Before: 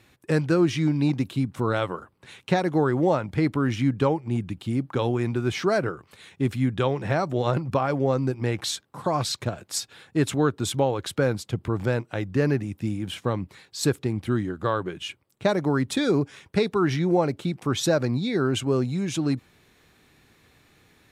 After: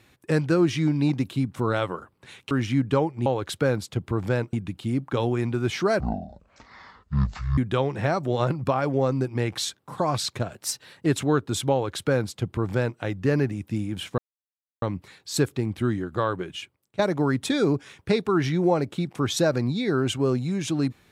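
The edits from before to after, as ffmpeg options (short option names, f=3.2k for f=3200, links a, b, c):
-filter_complex "[0:a]asplit=10[a][b][c][d][e][f][g][h][i][j];[a]atrim=end=2.512[k];[b]atrim=start=3.598:end=4.352[l];[c]atrim=start=10.828:end=12.102[m];[d]atrim=start=4.348:end=5.824[n];[e]atrim=start=5.82:end=6.64,asetpts=PTS-STARTPTS,asetrate=22932,aresample=44100,atrim=end_sample=69542,asetpts=PTS-STARTPTS[o];[f]atrim=start=6.636:end=9.614[p];[g]atrim=start=9.61:end=10.17,asetpts=PTS-STARTPTS,asetrate=48069,aresample=44100[q];[h]atrim=start=10.166:end=13.29,asetpts=PTS-STARTPTS,afade=t=out:st=3.12:d=0.004:c=hsin,apad=pad_dur=0.64[r];[i]atrim=start=13.29:end=15.46,asetpts=PTS-STARTPTS,afade=t=in:d=0.004:c=hsin,afade=t=out:st=1.64:d=0.53:silence=0.199526[s];[j]atrim=start=15.46,asetpts=PTS-STARTPTS,afade=t=in:d=0.004:c=hsin:silence=0.199526[t];[k][l]acrossfade=d=0.004:c1=hsin:c2=hsin[u];[u][m]acrossfade=d=0.004:c1=hsin:c2=hsin[v];[v][n]acrossfade=d=0.004:c1=hsin:c2=hsin[w];[w][o]acrossfade=d=0.004:c1=hsin:c2=hsin[x];[x][p]acrossfade=d=0.004:c1=hsin:c2=hsin[y];[y][q]acrossfade=d=0.004:c1=hsin:c2=hsin[z];[r][s][t]concat=n=3:v=0:a=1[aa];[z][aa]acrossfade=d=0.004:c1=hsin:c2=hsin"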